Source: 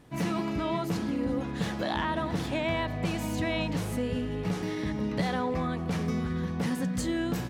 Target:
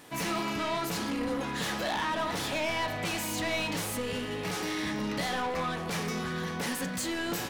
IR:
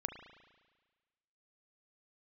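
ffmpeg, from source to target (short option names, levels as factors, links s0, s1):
-filter_complex "[0:a]aemphasis=mode=production:type=50kf,asplit=2[s0][s1];[s1]highpass=f=720:p=1,volume=14.1,asoftclip=type=tanh:threshold=0.168[s2];[s0][s2]amix=inputs=2:normalize=0,lowpass=f=6100:p=1,volume=0.501[s3];[1:a]atrim=start_sample=2205,atrim=end_sample=4410,asetrate=52920,aresample=44100[s4];[s3][s4]afir=irnorm=-1:irlink=0,volume=0.531"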